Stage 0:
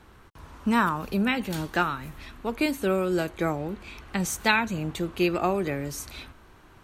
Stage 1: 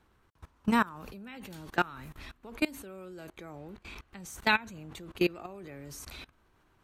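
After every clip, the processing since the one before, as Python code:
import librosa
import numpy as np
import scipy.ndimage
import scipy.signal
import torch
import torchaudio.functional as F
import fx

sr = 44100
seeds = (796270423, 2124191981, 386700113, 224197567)

y = fx.level_steps(x, sr, step_db=22)
y = y * librosa.db_to_amplitude(-1.0)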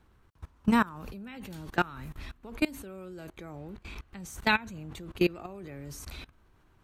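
y = fx.low_shelf(x, sr, hz=190.0, db=7.5)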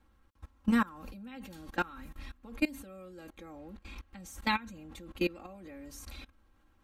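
y = x + 0.9 * np.pad(x, (int(3.7 * sr / 1000.0), 0))[:len(x)]
y = y * librosa.db_to_amplitude(-6.5)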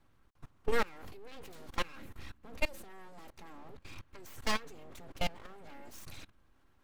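y = np.abs(x)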